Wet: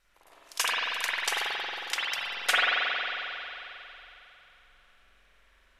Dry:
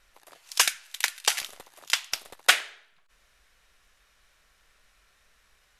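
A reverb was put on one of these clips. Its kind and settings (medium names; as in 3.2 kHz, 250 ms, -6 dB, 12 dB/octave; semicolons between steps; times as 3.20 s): spring tank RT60 3.3 s, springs 45 ms, chirp 75 ms, DRR -9.5 dB; trim -8.5 dB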